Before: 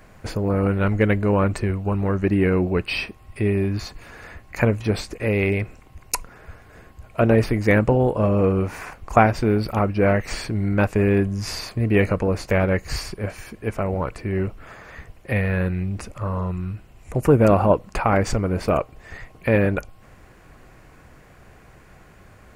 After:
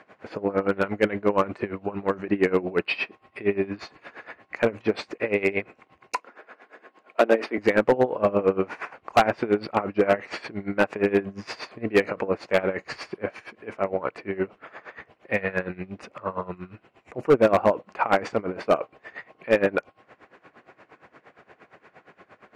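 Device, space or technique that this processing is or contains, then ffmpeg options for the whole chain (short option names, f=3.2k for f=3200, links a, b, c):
helicopter radio: -filter_complex "[0:a]highpass=310,lowpass=3k,aeval=exprs='val(0)*pow(10,-19*(0.5-0.5*cos(2*PI*8.6*n/s))/20)':c=same,asoftclip=type=hard:threshold=-16dB,asettb=1/sr,asplit=3[a][b][c];[a]atrim=end=6.154[d];[b]atrim=start=6.15:end=7.58,asetpts=PTS-STARTPTS,afade=t=in:d=0.004:c=qsin,afade=t=out:st=1.426:d=0.004:c=qsin,highpass=f=230:w=0.5412,highpass=f=230:w=1.3066[e];[c]atrim=start=7.576[f];[d][e]acrossfade=d=0.004:c1=hsin:c2=qsin[g];[g][f]acrossfade=d=0.004:c1=qsin:c2=hsin,volume=5.5dB"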